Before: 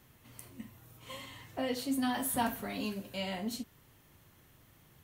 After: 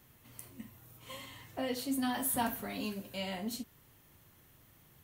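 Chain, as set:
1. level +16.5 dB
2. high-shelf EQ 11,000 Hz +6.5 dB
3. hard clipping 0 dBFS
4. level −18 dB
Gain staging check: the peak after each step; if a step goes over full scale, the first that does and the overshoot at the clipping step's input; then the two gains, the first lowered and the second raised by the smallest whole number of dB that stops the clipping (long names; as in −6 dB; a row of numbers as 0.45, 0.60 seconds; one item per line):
−2.5, −2.5, −2.5, −20.5 dBFS
no step passes full scale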